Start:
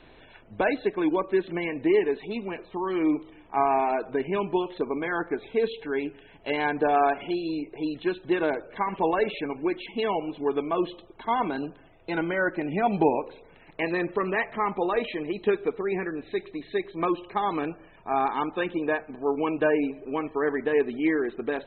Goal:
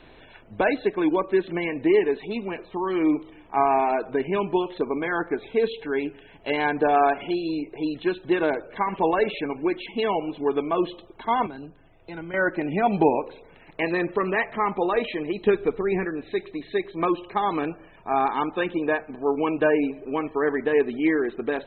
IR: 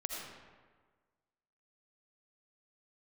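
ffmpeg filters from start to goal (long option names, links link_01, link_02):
-filter_complex "[0:a]asettb=1/sr,asplit=3[link_01][link_02][link_03];[link_01]atrim=end=11.464[link_04];[link_02]atrim=start=11.46:end=12.34,asetpts=PTS-STARTPTS,afade=type=in:duration=0.004:curve=qsin,afade=type=out:start_time=0.876:duration=0.004:curve=qsin,acrossover=split=140[link_05][link_06];[link_06]acompressor=threshold=-60dB:ratio=1.5[link_07];[link_05][link_07]amix=inputs=2:normalize=0[link_08];[link_03]atrim=start=12.336[link_09];[link_04][link_08]acrossfade=duration=0.004:curve1=hsin:curve2=qsin[link_10];[link_10][link_09]acrossfade=duration=0.004:curve1=qsin:curve2=hsin,asettb=1/sr,asplit=3[link_11][link_12][link_13];[link_11]atrim=end=15.444[link_14];[link_12]atrim=start=15.44:end=16.05,asetpts=PTS-STARTPTS,afade=type=in:duration=0.004:curve=qsin,afade=type=out:start_time=0.606:duration=0.004:curve=qsin,lowshelf=frequency=120:gain=12[link_15];[link_13]atrim=start=16.046[link_16];[link_14][link_15]acrossfade=duration=0.004:curve1=hsin:curve2=qsin[link_17];[link_17][link_16]acrossfade=duration=0.004:curve1=qsin:curve2=hsin,volume=2.5dB"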